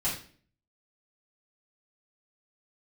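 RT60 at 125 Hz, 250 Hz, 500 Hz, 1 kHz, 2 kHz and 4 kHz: 0.65, 0.60, 0.50, 0.40, 0.45, 0.40 s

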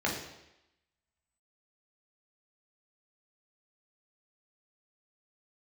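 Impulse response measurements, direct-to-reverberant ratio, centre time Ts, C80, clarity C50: -3.0 dB, 38 ms, 7.5 dB, 4.5 dB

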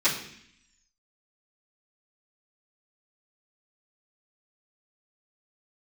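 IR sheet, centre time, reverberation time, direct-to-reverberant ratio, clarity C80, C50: 28 ms, 0.65 s, -15.5 dB, 10.5 dB, 7.5 dB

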